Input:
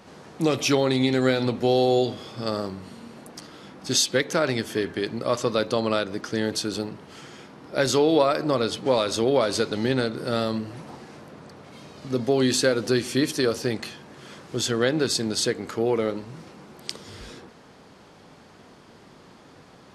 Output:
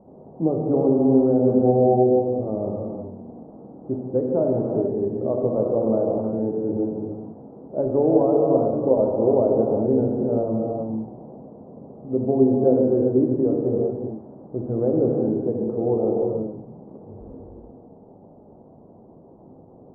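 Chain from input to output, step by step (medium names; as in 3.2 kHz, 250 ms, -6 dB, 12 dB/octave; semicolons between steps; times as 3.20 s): steep low-pass 790 Hz 36 dB/octave; gated-style reverb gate 450 ms flat, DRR -1.5 dB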